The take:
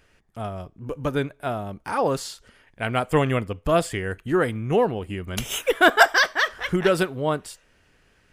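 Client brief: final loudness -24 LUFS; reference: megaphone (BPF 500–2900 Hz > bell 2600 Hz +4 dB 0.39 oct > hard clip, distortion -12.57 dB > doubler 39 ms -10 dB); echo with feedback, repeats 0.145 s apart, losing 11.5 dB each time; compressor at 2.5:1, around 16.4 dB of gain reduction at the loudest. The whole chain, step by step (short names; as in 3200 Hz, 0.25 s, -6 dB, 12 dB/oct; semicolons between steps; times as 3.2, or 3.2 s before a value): compressor 2.5:1, threshold -35 dBFS; BPF 500–2900 Hz; bell 2600 Hz +4 dB 0.39 oct; feedback echo 0.145 s, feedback 27%, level -11.5 dB; hard clip -29 dBFS; doubler 39 ms -10 dB; gain +14 dB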